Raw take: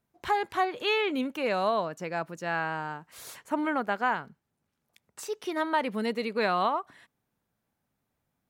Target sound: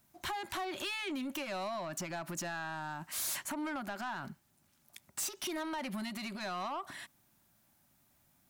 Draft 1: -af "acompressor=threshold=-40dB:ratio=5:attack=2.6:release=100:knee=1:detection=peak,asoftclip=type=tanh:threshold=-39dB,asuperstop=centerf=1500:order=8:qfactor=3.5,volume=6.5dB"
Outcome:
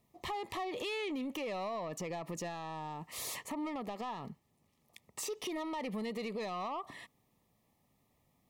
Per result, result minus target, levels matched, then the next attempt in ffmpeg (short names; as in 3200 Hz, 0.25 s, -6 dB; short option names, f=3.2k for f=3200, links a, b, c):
8000 Hz band -4.0 dB; 2000 Hz band -4.0 dB
-af "acompressor=threshold=-40dB:ratio=5:attack=2.6:release=100:knee=1:detection=peak,highshelf=f=3.9k:g=11,asoftclip=type=tanh:threshold=-39dB,asuperstop=centerf=1500:order=8:qfactor=3.5,volume=6.5dB"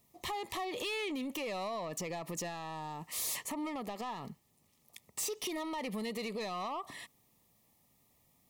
2000 Hz band -3.5 dB
-af "acompressor=threshold=-40dB:ratio=5:attack=2.6:release=100:knee=1:detection=peak,highshelf=f=3.9k:g=11,asoftclip=type=tanh:threshold=-39dB,asuperstop=centerf=460:order=8:qfactor=3.5,volume=6.5dB"